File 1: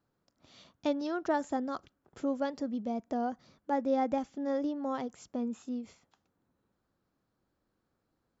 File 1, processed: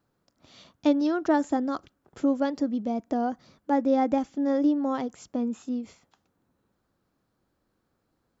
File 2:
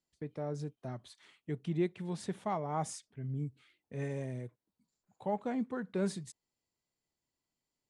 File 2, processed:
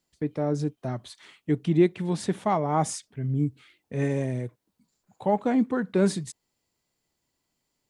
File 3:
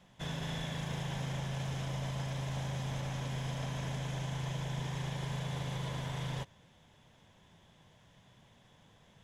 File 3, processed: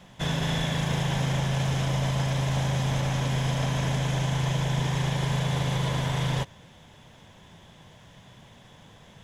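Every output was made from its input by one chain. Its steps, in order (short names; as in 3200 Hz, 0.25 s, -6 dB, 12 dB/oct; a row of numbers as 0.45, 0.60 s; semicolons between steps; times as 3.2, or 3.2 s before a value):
dynamic EQ 300 Hz, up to +7 dB, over -50 dBFS, Q 5; match loudness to -27 LUFS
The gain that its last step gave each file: +5.0, +10.5, +11.0 dB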